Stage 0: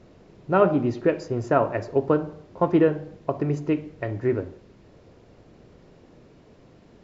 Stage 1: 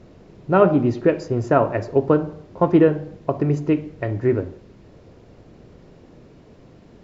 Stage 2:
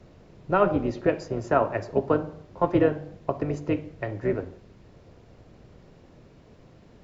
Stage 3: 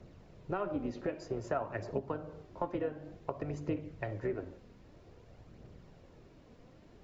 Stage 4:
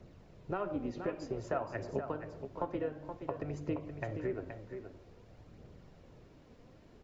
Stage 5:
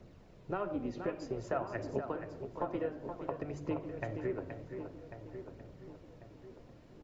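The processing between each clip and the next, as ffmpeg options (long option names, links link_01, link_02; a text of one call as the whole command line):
ffmpeg -i in.wav -af "lowshelf=frequency=370:gain=3.5,volume=2.5dB" out.wav
ffmpeg -i in.wav -filter_complex "[0:a]acrossover=split=180|590|1700[link_01][link_02][link_03][link_04];[link_01]acompressor=threshold=-34dB:ratio=6[link_05];[link_02]tremolo=f=200:d=0.889[link_06];[link_05][link_06][link_03][link_04]amix=inputs=4:normalize=0,volume=-3dB" out.wav
ffmpeg -i in.wav -af "acompressor=threshold=-27dB:ratio=5,aphaser=in_gain=1:out_gain=1:delay=4.3:decay=0.32:speed=0.53:type=triangular,volume=-5.5dB" out.wav
ffmpeg -i in.wav -af "aecho=1:1:474:0.376,volume=-1dB" out.wav
ffmpeg -i in.wav -filter_complex "[0:a]bandreject=frequency=50:width_type=h:width=6,bandreject=frequency=100:width_type=h:width=6,bandreject=frequency=150:width_type=h:width=6,asplit=2[link_01][link_02];[link_02]adelay=1094,lowpass=frequency=1600:poles=1,volume=-10dB,asplit=2[link_03][link_04];[link_04]adelay=1094,lowpass=frequency=1600:poles=1,volume=0.42,asplit=2[link_05][link_06];[link_06]adelay=1094,lowpass=frequency=1600:poles=1,volume=0.42,asplit=2[link_07][link_08];[link_08]adelay=1094,lowpass=frequency=1600:poles=1,volume=0.42[link_09];[link_01][link_03][link_05][link_07][link_09]amix=inputs=5:normalize=0" out.wav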